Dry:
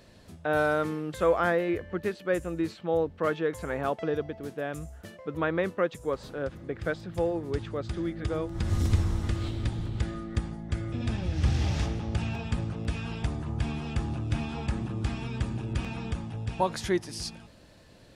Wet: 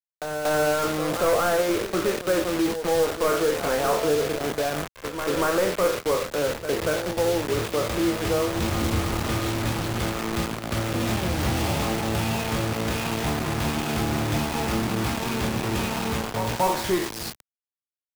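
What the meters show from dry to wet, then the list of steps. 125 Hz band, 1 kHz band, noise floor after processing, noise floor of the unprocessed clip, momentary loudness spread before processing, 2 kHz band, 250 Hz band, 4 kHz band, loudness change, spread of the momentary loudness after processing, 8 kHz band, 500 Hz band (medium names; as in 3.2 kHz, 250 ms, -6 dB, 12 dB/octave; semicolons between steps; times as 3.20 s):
+1.0 dB, +8.0 dB, under -85 dBFS, -53 dBFS, 9 LU, +6.5 dB, +6.0 dB, +12.0 dB, +6.0 dB, 5 LU, +14.5 dB, +6.5 dB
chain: spectral sustain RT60 0.56 s; peaking EQ 1.7 kHz -6 dB 0.43 oct; transient shaper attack -3 dB, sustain -7 dB; overdrive pedal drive 20 dB, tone 1.2 kHz, clips at -12 dBFS; doubling 27 ms -9.5 dB; bit crusher 5-bit; reverse echo 235 ms -11 dB; three bands compressed up and down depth 40%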